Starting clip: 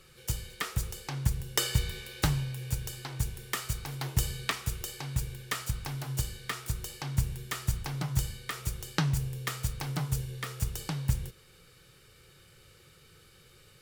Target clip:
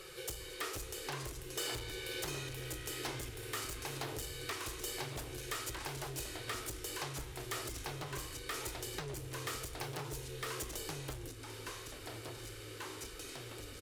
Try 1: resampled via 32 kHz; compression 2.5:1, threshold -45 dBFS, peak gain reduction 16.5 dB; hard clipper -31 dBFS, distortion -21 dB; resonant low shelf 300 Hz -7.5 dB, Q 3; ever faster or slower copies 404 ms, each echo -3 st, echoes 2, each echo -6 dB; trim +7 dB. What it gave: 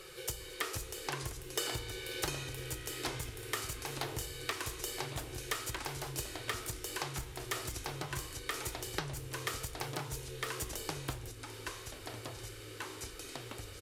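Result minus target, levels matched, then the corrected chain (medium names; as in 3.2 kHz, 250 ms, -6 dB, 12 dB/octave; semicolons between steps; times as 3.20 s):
hard clipper: distortion -13 dB
resampled via 32 kHz; compression 2.5:1, threshold -45 dBFS, peak gain reduction 16.5 dB; hard clipper -41.5 dBFS, distortion -8 dB; resonant low shelf 300 Hz -7.5 dB, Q 3; ever faster or slower copies 404 ms, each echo -3 st, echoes 2, each echo -6 dB; trim +7 dB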